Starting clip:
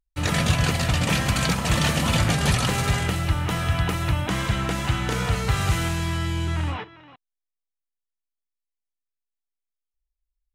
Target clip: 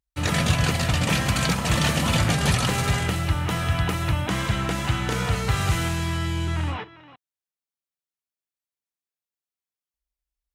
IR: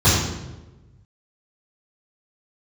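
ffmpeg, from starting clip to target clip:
-af "highpass=48"

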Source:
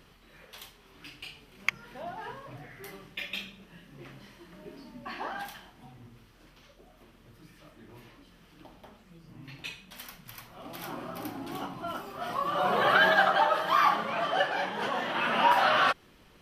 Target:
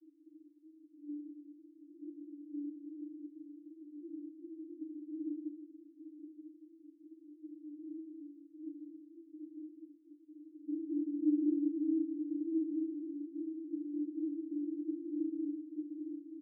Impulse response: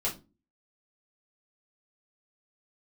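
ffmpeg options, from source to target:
-filter_complex "[0:a]asplit=2[a][b];[b]aecho=0:1:40.82|198.3:0.708|0.501[c];[a][c]amix=inputs=2:normalize=0,alimiter=limit=-20dB:level=0:latency=1,asuperpass=centerf=310:order=12:qfactor=6.2,aecho=1:1:927:0.299,asplit=2[d][e];[1:a]atrim=start_sample=2205[f];[e][f]afir=irnorm=-1:irlink=0,volume=-18.5dB[g];[d][g]amix=inputs=2:normalize=0,volume=11.5dB"

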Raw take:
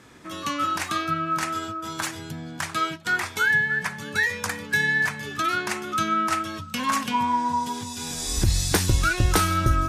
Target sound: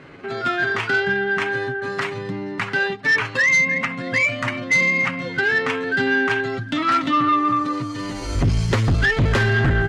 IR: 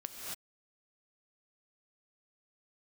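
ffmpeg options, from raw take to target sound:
-af "asetrate=53981,aresample=44100,atempo=0.816958,lowpass=2.5k,aecho=1:1:7.3:0.4,aeval=exprs='0.376*(cos(1*acos(clip(val(0)/0.376,-1,1)))-cos(1*PI/2))+0.168*(cos(5*acos(clip(val(0)/0.376,-1,1)))-cos(5*PI/2))':c=same,volume=-2.5dB"

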